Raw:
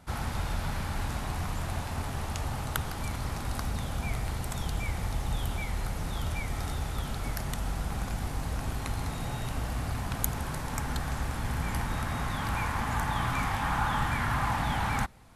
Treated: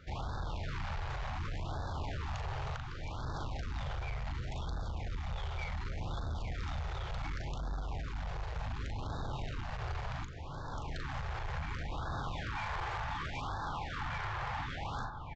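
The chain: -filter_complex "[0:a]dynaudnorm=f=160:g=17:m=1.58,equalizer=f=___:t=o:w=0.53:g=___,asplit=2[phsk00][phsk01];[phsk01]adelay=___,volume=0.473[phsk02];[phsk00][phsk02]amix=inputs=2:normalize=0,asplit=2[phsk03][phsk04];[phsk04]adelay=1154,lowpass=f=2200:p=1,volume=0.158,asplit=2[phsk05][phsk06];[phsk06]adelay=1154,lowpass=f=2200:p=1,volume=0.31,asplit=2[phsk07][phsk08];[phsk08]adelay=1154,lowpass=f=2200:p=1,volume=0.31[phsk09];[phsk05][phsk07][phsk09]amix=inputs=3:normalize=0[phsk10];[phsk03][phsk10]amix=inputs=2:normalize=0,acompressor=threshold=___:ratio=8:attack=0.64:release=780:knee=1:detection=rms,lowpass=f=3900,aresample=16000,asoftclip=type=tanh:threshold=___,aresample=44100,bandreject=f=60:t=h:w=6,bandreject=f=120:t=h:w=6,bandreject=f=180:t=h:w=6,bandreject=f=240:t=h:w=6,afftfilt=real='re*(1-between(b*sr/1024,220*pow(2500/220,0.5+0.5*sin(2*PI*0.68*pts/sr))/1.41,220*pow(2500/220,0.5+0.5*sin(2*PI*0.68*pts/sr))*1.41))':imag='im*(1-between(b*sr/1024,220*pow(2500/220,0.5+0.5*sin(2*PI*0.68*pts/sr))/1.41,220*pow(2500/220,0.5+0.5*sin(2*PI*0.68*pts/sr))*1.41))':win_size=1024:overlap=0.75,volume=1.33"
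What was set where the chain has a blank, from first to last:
220, -10.5, 39, 0.0447, 0.0168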